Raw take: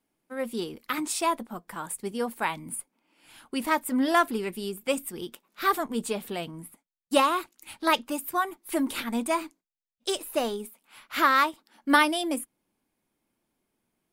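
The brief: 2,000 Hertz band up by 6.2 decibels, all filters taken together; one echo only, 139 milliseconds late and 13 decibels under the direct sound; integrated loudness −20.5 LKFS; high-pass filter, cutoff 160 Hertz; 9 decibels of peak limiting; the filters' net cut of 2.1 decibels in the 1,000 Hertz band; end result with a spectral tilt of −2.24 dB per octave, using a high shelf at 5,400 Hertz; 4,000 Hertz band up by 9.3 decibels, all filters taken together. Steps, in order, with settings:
high-pass filter 160 Hz
parametric band 1,000 Hz −6 dB
parametric band 2,000 Hz +7.5 dB
parametric band 4,000 Hz +7.5 dB
high-shelf EQ 5,400 Hz +5.5 dB
brickwall limiter −10.5 dBFS
single-tap delay 139 ms −13 dB
level +6 dB

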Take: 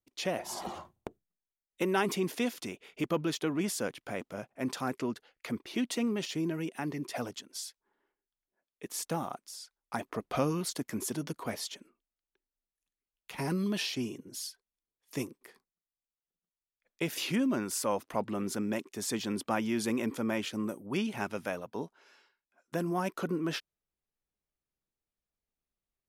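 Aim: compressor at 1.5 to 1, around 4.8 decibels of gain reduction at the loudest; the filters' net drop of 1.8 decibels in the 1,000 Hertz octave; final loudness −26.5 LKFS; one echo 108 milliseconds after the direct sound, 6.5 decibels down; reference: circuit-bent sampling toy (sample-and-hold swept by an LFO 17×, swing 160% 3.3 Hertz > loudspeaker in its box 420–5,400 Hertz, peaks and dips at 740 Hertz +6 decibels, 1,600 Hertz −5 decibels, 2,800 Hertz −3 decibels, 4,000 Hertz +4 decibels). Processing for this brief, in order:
parametric band 1,000 Hz −6.5 dB
downward compressor 1.5 to 1, threshold −40 dBFS
single-tap delay 108 ms −6.5 dB
sample-and-hold swept by an LFO 17×, swing 160% 3.3 Hz
loudspeaker in its box 420–5,400 Hz, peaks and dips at 740 Hz +6 dB, 1,600 Hz −5 dB, 2,800 Hz −3 dB, 4,000 Hz +4 dB
level +15.5 dB

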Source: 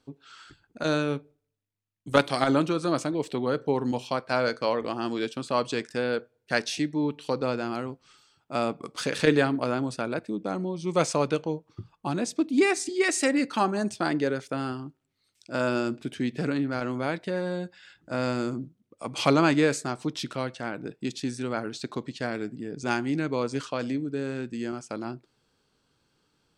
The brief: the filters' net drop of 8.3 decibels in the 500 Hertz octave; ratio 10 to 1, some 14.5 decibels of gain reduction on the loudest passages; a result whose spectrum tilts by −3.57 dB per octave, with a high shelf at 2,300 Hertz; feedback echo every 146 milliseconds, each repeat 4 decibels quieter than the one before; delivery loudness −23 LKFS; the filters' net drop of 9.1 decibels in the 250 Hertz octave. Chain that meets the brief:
parametric band 250 Hz −9 dB
parametric band 500 Hz −8 dB
high-shelf EQ 2,300 Hz +3.5 dB
downward compressor 10 to 1, threshold −34 dBFS
repeating echo 146 ms, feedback 63%, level −4 dB
level +14.5 dB

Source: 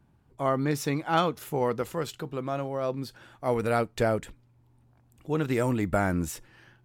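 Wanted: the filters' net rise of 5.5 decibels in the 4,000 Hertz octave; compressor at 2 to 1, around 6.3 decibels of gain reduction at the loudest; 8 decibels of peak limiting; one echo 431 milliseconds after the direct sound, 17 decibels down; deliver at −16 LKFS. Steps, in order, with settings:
parametric band 4,000 Hz +7 dB
downward compressor 2 to 1, threshold −31 dBFS
brickwall limiter −25.5 dBFS
single-tap delay 431 ms −17 dB
level +20.5 dB

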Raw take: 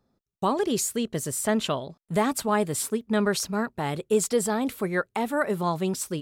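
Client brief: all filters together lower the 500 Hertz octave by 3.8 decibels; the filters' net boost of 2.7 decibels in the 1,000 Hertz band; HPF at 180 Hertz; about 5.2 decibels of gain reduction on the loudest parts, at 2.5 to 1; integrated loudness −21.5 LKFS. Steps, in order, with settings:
high-pass filter 180 Hz
parametric band 500 Hz −6 dB
parametric band 1,000 Hz +5 dB
downward compressor 2.5 to 1, threshold −26 dBFS
level +9 dB

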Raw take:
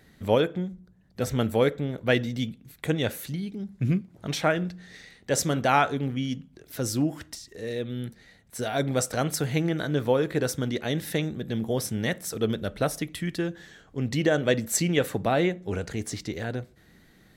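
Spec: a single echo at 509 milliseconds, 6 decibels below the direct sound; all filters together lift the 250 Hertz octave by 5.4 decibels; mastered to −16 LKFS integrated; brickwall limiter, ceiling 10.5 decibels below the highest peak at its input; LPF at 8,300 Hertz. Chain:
low-pass filter 8,300 Hz
parametric band 250 Hz +7 dB
brickwall limiter −16 dBFS
single-tap delay 509 ms −6 dB
level +11 dB

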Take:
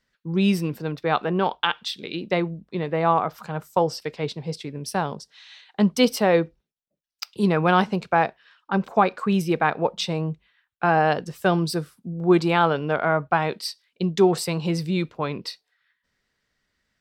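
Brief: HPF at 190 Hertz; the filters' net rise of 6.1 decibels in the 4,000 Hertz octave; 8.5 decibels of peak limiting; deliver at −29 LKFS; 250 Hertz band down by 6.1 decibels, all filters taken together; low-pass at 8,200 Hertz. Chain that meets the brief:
high-pass filter 190 Hz
low-pass filter 8,200 Hz
parametric band 250 Hz −7 dB
parametric band 4,000 Hz +8 dB
level −3 dB
brickwall limiter −13.5 dBFS

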